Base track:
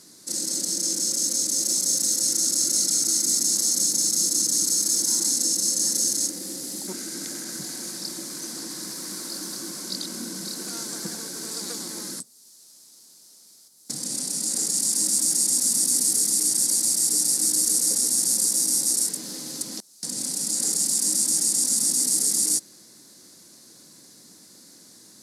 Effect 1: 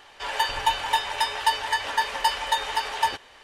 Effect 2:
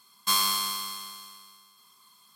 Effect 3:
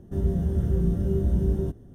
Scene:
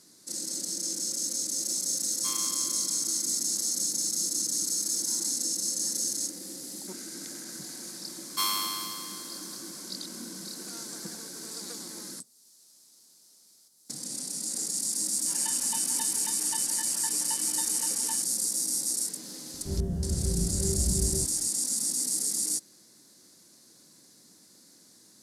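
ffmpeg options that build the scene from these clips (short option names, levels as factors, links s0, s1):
-filter_complex "[2:a]asplit=2[s0][s1];[0:a]volume=0.447[s2];[s1]highpass=270[s3];[1:a]lowshelf=f=500:g=-10.5[s4];[s0]atrim=end=2.35,asetpts=PTS-STARTPTS,volume=0.188,afade=t=in:d=0.004:c=hsin,afade=t=out:st=2.346:d=0.004:c=hsin,adelay=1970[s5];[s3]atrim=end=2.35,asetpts=PTS-STARTPTS,volume=0.596,afade=t=in:d=0.004:c=hsin,afade=t=out:st=2.346:d=0.004:c=hsin,adelay=357210S[s6];[s4]atrim=end=3.43,asetpts=PTS-STARTPTS,volume=0.141,afade=t=in:d=0.004:c=hsin,afade=t=out:st=3.426:d=0.004:c=hsin,adelay=15060[s7];[3:a]atrim=end=1.94,asetpts=PTS-STARTPTS,volume=0.531,afade=t=in:d=0.004:c=hsin,afade=t=out:st=1.936:d=0.004:c=hsin,adelay=19540[s8];[s2][s5][s6][s7][s8]amix=inputs=5:normalize=0"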